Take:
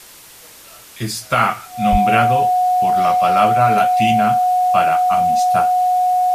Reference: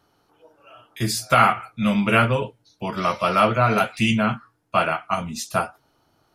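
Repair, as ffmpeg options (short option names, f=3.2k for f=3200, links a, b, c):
-filter_complex "[0:a]bandreject=f=730:w=30,asplit=3[a][b][c];[a]afade=t=out:st=1.91:d=0.02[d];[b]highpass=f=140:w=0.5412,highpass=f=140:w=1.3066,afade=t=in:st=1.91:d=0.02,afade=t=out:st=2.03:d=0.02[e];[c]afade=t=in:st=2.03:d=0.02[f];[d][e][f]amix=inputs=3:normalize=0,afwtdn=0.01"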